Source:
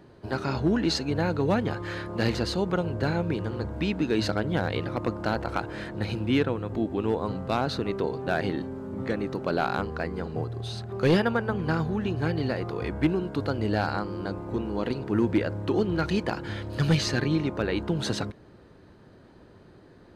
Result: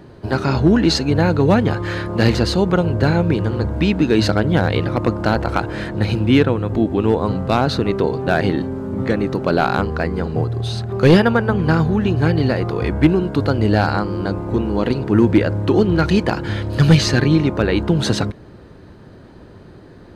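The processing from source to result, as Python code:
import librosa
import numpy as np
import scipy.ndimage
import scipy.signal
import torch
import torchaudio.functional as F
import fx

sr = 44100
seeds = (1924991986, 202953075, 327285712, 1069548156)

y = fx.low_shelf(x, sr, hz=190.0, db=4.5)
y = F.gain(torch.from_numpy(y), 9.0).numpy()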